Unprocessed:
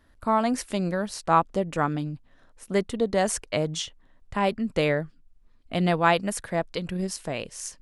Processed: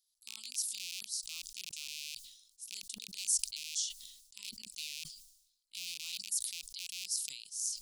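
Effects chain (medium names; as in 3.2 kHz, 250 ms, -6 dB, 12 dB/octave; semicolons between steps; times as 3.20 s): rattle on loud lows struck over -33 dBFS, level -12 dBFS; inverse Chebyshev high-pass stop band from 1.8 kHz, stop band 50 dB; decay stretcher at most 68 dB/s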